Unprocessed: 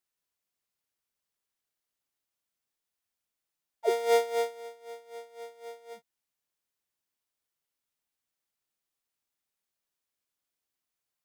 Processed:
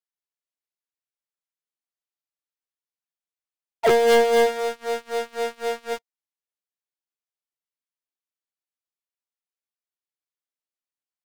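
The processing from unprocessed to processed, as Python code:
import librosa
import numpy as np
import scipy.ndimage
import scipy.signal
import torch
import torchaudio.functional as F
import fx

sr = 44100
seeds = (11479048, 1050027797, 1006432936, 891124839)

y = scipy.signal.sosfilt(scipy.signal.butter(2, 280.0, 'highpass', fs=sr, output='sos'), x)
y = fx.high_shelf(y, sr, hz=9600.0, db=-7.0)
y = fx.leveller(y, sr, passes=5)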